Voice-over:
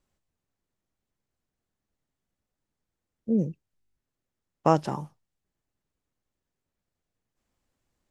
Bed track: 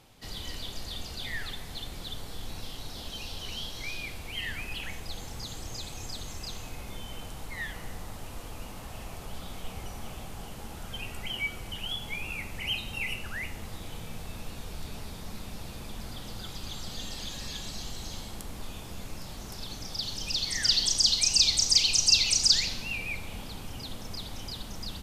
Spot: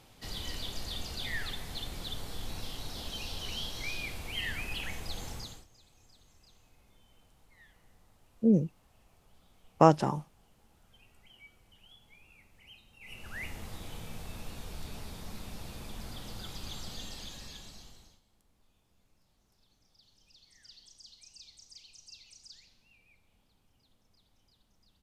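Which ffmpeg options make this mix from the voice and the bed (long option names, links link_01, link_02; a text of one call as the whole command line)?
ffmpeg -i stem1.wav -i stem2.wav -filter_complex "[0:a]adelay=5150,volume=1dB[link_01];[1:a]volume=20dB,afade=type=out:start_time=5.3:duration=0.36:silence=0.0707946,afade=type=in:start_time=13:duration=0.48:silence=0.0944061,afade=type=out:start_time=16.76:duration=1.44:silence=0.0398107[link_02];[link_01][link_02]amix=inputs=2:normalize=0" out.wav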